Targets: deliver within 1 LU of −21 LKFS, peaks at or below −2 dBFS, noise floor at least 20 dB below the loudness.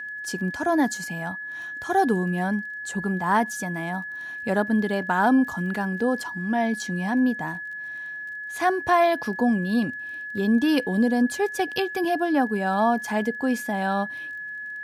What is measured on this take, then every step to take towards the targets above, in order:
crackle rate 23 per second; interfering tone 1,700 Hz; level of the tone −32 dBFS; integrated loudness −25.0 LKFS; sample peak −9.0 dBFS; target loudness −21.0 LKFS
→ click removal
notch filter 1,700 Hz, Q 30
level +4 dB

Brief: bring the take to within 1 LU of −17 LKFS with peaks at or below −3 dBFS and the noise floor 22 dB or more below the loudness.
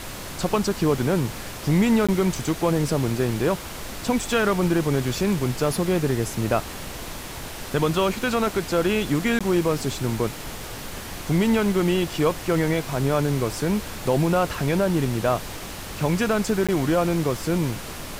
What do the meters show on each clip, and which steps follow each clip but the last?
number of dropouts 3; longest dropout 16 ms; background noise floor −35 dBFS; target noise floor −45 dBFS; integrated loudness −23.0 LKFS; sample peak −8.0 dBFS; target loudness −17.0 LKFS
→ repair the gap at 0:02.07/0:09.39/0:16.67, 16 ms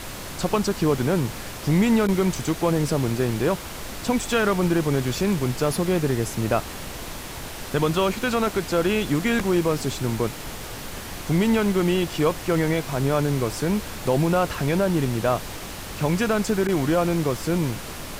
number of dropouts 0; background noise floor −35 dBFS; target noise floor −45 dBFS
→ noise reduction from a noise print 10 dB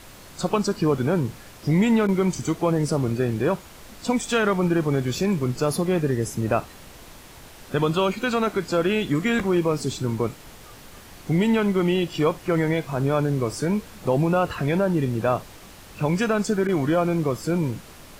background noise floor −45 dBFS; target noise floor −46 dBFS
→ noise reduction from a noise print 6 dB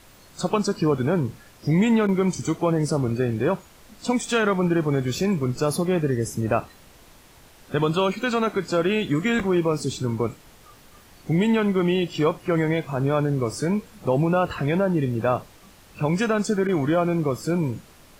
background noise floor −51 dBFS; integrated loudness −23.5 LKFS; sample peak −8.5 dBFS; target loudness −17.0 LKFS
→ level +6.5 dB
brickwall limiter −3 dBFS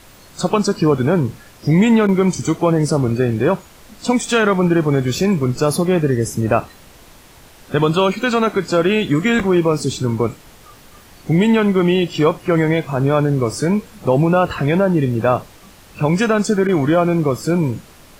integrated loudness −17.0 LKFS; sample peak −3.0 dBFS; background noise floor −44 dBFS

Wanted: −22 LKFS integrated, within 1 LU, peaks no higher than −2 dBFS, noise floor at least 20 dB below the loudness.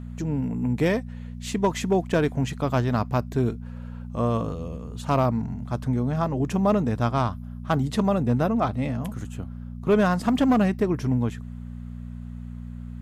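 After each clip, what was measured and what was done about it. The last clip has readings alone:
share of clipped samples 0.3%; peaks flattened at −13.5 dBFS; mains hum 60 Hz; hum harmonics up to 240 Hz; level of the hum −33 dBFS; integrated loudness −25.0 LKFS; sample peak −13.5 dBFS; target loudness −22.0 LKFS
→ clipped peaks rebuilt −13.5 dBFS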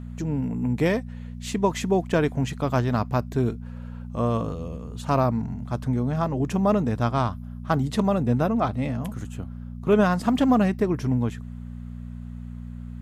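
share of clipped samples 0.0%; mains hum 60 Hz; hum harmonics up to 240 Hz; level of the hum −33 dBFS
→ hum removal 60 Hz, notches 4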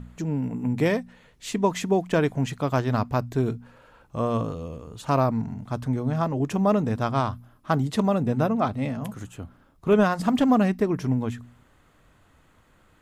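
mains hum none found; integrated loudness −25.0 LKFS; sample peak −8.0 dBFS; target loudness −22.0 LKFS
→ level +3 dB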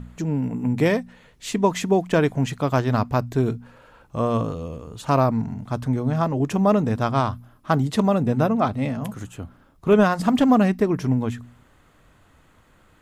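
integrated loudness −22.0 LKFS; sample peak −5.0 dBFS; background noise floor −56 dBFS

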